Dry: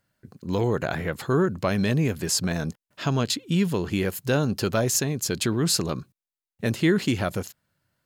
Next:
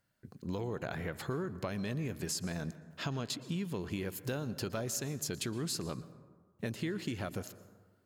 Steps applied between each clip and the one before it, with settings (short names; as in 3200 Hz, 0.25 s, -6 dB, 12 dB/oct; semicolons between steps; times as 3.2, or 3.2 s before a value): compressor, threshold -29 dBFS, peak gain reduction 12.5 dB; plate-style reverb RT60 1.5 s, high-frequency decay 0.4×, pre-delay 0.105 s, DRR 15 dB; gain -5 dB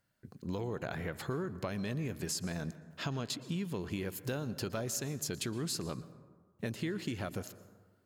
nothing audible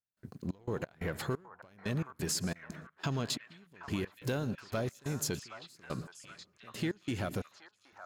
step gate ".xx.x.xx...x" 89 bpm -24 dB; sample leveller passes 1; delay with a stepping band-pass 0.772 s, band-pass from 1100 Hz, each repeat 0.7 oct, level -6 dB